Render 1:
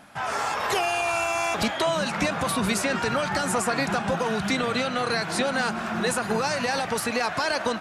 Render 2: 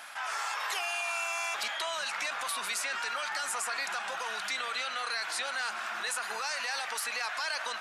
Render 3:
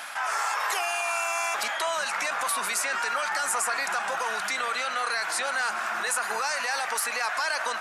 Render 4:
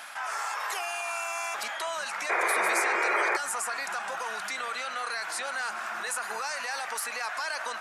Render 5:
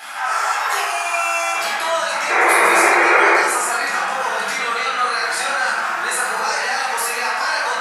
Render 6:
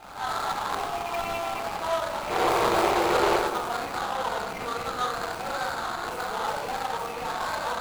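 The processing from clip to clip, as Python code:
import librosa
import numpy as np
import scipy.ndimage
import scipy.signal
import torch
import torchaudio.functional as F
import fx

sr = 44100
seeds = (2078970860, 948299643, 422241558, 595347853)

y1 = scipy.signal.sosfilt(scipy.signal.butter(2, 1200.0, 'highpass', fs=sr, output='sos'), x)
y1 = fx.env_flatten(y1, sr, amount_pct=50)
y1 = F.gain(torch.from_numpy(y1), -6.0).numpy()
y2 = fx.dynamic_eq(y1, sr, hz=3500.0, q=1.0, threshold_db=-50.0, ratio=4.0, max_db=-8)
y2 = F.gain(torch.from_numpy(y2), 8.5).numpy()
y3 = fx.spec_paint(y2, sr, seeds[0], shape='noise', start_s=2.29, length_s=1.08, low_hz=330.0, high_hz=2500.0, level_db=-22.0)
y3 = F.gain(torch.from_numpy(y3), -5.0).numpy()
y4 = fx.room_shoebox(y3, sr, seeds[1], volume_m3=400.0, walls='mixed', distance_m=4.0)
y4 = F.gain(torch.from_numpy(y4), 2.5).numpy()
y5 = scipy.ndimage.median_filter(y4, 25, mode='constant')
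y5 = F.gain(torch.from_numpy(y5), -4.0).numpy()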